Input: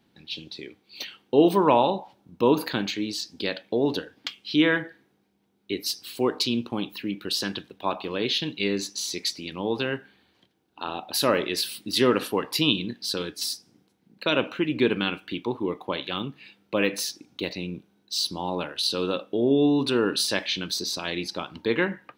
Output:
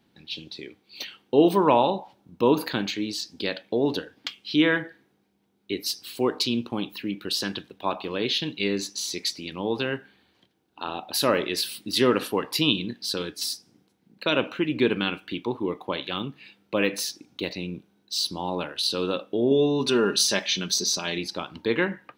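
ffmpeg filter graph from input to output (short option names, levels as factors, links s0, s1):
-filter_complex "[0:a]asettb=1/sr,asplit=3[s0][s1][s2];[s0]atrim=end=19.514[s3];[s1]atrim=start=19.51:end=21.18,asetpts=PTS-STARTPTS,afade=t=in:d=0.004:c=qsin,afade=t=out:st=1.666:d=0.004:c=qsin,equalizer=f=6100:w=3.3:g=9.5,aecho=1:1:5:0.5,atrim=end_sample=73647[s4];[s2]atrim=start=21.176[s5];[s3][s4]acrossfade=d=0.004:c1=hsin:c2=qsin[s6];[s6][s5]acrossfade=d=0.004:c1=qsin:c2=hsin"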